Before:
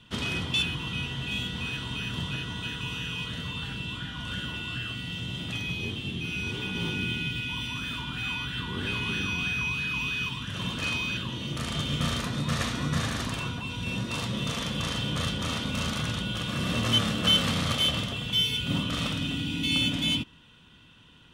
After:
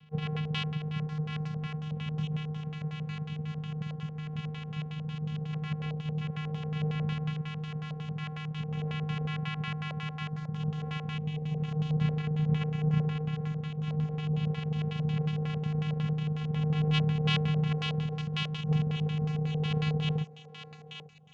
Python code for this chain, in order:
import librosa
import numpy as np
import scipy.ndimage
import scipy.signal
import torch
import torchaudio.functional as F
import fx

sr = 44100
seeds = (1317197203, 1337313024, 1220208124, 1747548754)

y = fx.vocoder(x, sr, bands=4, carrier='square', carrier_hz=153.0)
y = fx.echo_thinned(y, sr, ms=843, feedback_pct=63, hz=830.0, wet_db=-8.0)
y = fx.filter_lfo_lowpass(y, sr, shape='square', hz=5.5, low_hz=570.0, high_hz=2900.0, q=3.2)
y = F.gain(torch.from_numpy(y), -1.0).numpy()